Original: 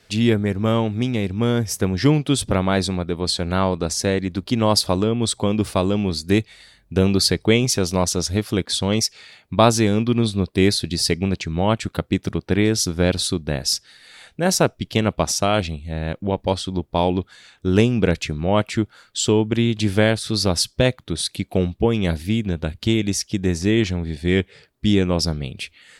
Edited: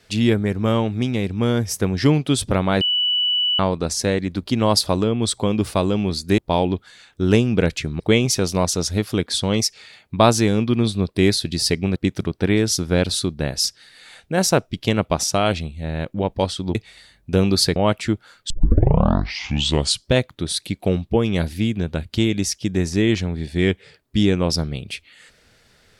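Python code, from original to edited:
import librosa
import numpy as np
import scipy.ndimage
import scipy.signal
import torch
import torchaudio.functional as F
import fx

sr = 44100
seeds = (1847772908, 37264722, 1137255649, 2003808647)

y = fx.edit(x, sr, fx.bleep(start_s=2.81, length_s=0.78, hz=2960.0, db=-16.5),
    fx.swap(start_s=6.38, length_s=1.01, other_s=16.83, other_length_s=1.62),
    fx.cut(start_s=11.35, length_s=0.69),
    fx.tape_start(start_s=19.19, length_s=1.58), tone=tone)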